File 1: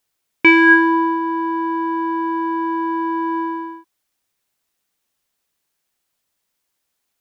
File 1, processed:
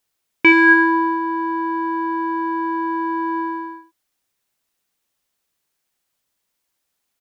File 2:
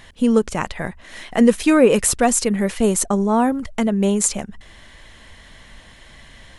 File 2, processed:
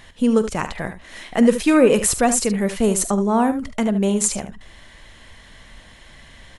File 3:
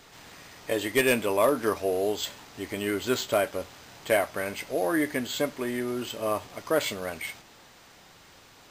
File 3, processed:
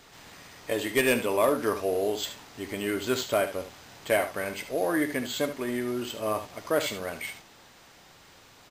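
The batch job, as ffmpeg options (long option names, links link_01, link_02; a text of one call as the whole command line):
ffmpeg -i in.wav -af "aecho=1:1:46|74:0.133|0.266,volume=-1dB" out.wav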